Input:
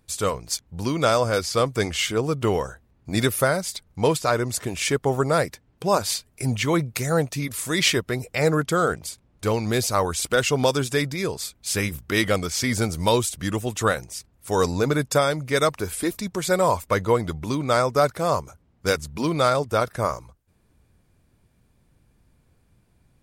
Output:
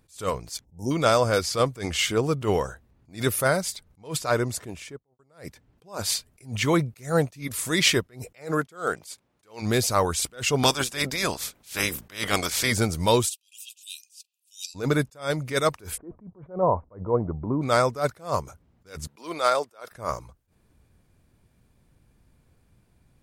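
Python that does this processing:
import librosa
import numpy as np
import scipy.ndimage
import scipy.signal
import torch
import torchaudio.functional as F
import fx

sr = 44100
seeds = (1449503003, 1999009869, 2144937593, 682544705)

y = fx.spec_box(x, sr, start_s=0.64, length_s=0.27, low_hz=940.0, high_hz=5100.0, gain_db=-29)
y = fx.studio_fade_out(y, sr, start_s=4.3, length_s=0.89)
y = fx.highpass(y, sr, hz=fx.line((8.33, 240.0), (9.61, 650.0)), slope=6, at=(8.33, 9.61), fade=0.02)
y = fx.spec_clip(y, sr, under_db=18, at=(10.62, 12.71), fade=0.02)
y = fx.brickwall_highpass(y, sr, low_hz=2400.0, at=(13.28, 14.74), fade=0.02)
y = fx.cheby2_lowpass(y, sr, hz=4400.0, order=4, stop_db=70, at=(15.96, 17.61), fade=0.02)
y = fx.highpass(y, sr, hz=470.0, slope=12, at=(19.07, 19.91))
y = fx.attack_slew(y, sr, db_per_s=190.0)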